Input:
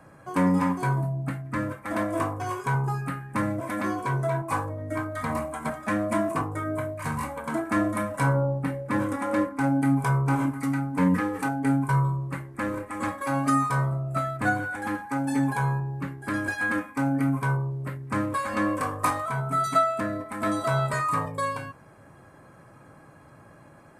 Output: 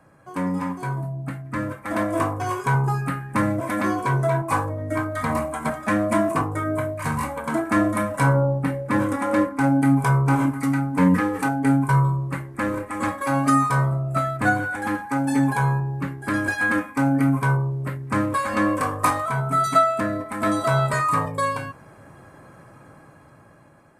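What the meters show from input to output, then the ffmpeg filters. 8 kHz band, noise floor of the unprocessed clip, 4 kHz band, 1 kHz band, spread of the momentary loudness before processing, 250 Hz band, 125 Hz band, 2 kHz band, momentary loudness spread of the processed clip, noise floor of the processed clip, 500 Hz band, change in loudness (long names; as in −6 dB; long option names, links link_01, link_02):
+4.5 dB, −52 dBFS, +4.5 dB, +4.5 dB, 8 LU, +4.5 dB, +4.5 dB, +4.5 dB, 8 LU, −49 dBFS, +4.5 dB, +4.5 dB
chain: -af "dynaudnorm=framelen=450:gausssize=7:maxgain=9dB,volume=-3.5dB"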